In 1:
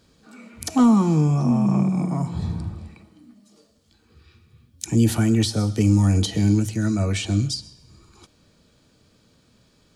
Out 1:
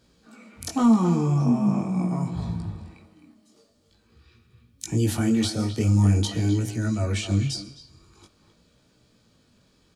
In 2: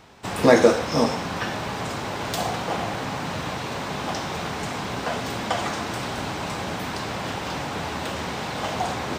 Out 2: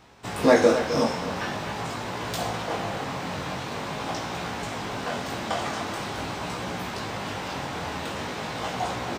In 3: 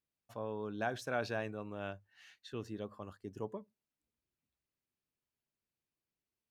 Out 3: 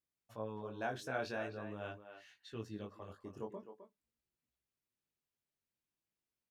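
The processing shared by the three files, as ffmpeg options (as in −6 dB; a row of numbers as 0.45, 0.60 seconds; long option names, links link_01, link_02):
-filter_complex "[0:a]flanger=delay=16.5:depth=6.2:speed=0.45,asplit=2[link_01][link_02];[link_02]adelay=260,highpass=300,lowpass=3400,asoftclip=type=hard:threshold=-13.5dB,volume=-9dB[link_03];[link_01][link_03]amix=inputs=2:normalize=0"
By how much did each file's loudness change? −3.0, −2.5, −3.0 LU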